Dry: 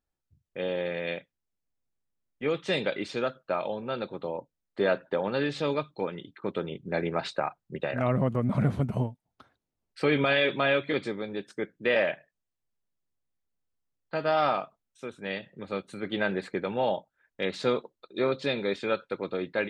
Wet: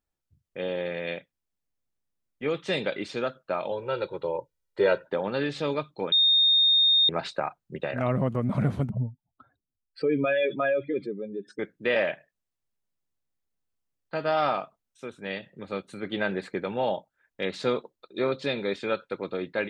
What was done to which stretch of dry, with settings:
0:03.71–0:05.08: comb filter 2.1 ms, depth 84%
0:06.12–0:07.09: beep over 3,680 Hz −17 dBFS
0:08.89–0:11.59: expanding power law on the bin magnitudes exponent 2.2

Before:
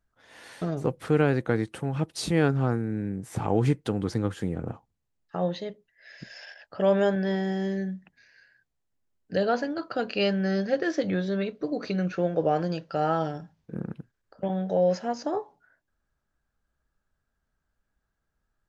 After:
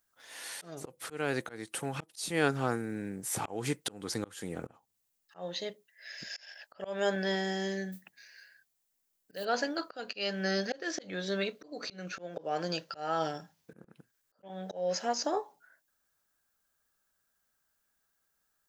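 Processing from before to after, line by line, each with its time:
0:07.92–0:09.45: noise that follows the level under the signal 34 dB
whole clip: RIAA equalisation recording; volume swells 319 ms

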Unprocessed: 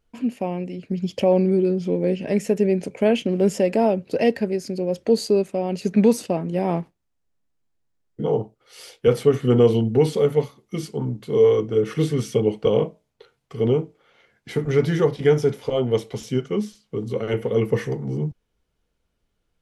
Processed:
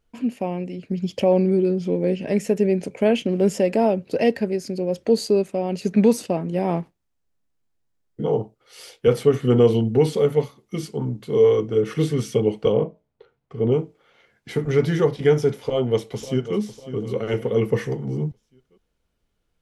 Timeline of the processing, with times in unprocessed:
0:12.72–0:13.72: low-pass filter 1,100 Hz 6 dB per octave
0:15.55–0:16.57: delay throw 550 ms, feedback 45%, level −13.5 dB

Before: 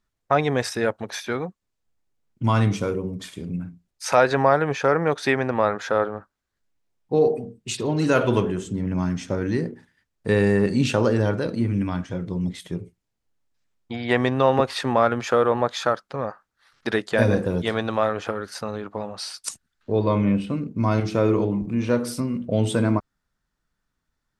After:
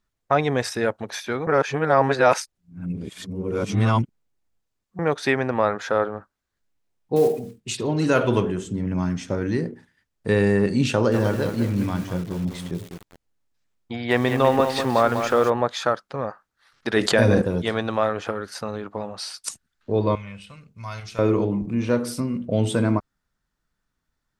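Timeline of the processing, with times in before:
0:01.47–0:04.99: reverse
0:07.16–0:07.61: one scale factor per block 5 bits
0:10.92–0:15.50: feedback echo at a low word length 199 ms, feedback 35%, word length 6 bits, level −7 dB
0:16.96–0:17.42: envelope flattener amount 70%
0:20.15–0:21.19: guitar amp tone stack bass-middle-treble 10-0-10

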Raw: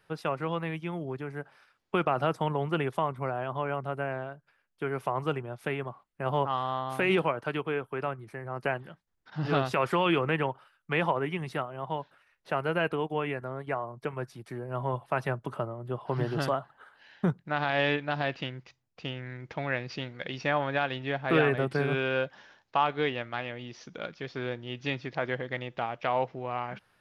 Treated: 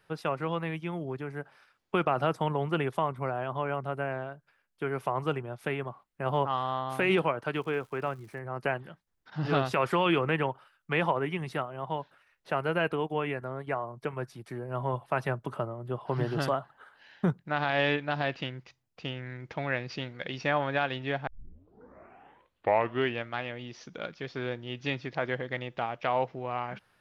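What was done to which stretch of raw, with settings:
0:07.54–0:08.38: surface crackle 420 per second −50 dBFS
0:21.27: tape start 1.98 s

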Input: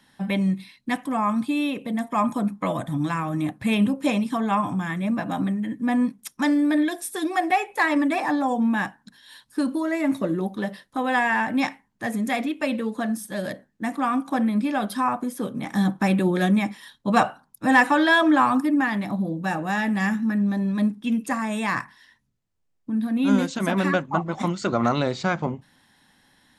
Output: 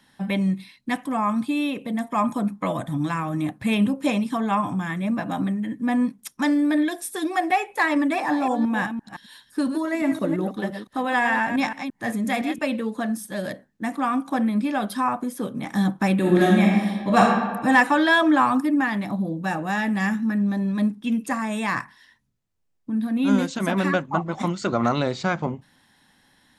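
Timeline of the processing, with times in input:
0:08.14–0:12.60: delay that plays each chunk backwards 171 ms, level −8 dB
0:16.18–0:17.20: thrown reverb, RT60 1.4 s, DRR −2.5 dB

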